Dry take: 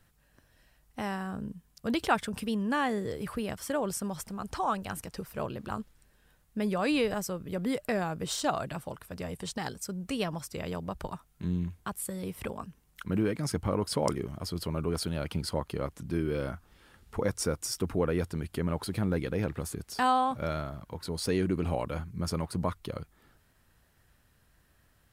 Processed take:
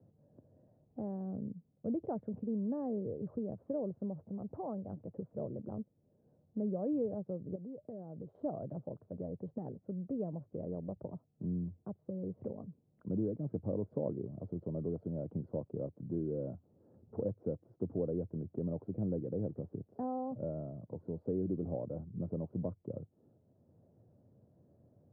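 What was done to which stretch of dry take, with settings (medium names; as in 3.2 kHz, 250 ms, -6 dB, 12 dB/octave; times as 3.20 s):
7.55–8.35 s: compression, threshold -41 dBFS
whole clip: Chebyshev band-pass 100–600 Hz, order 3; three bands compressed up and down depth 40%; trim -4.5 dB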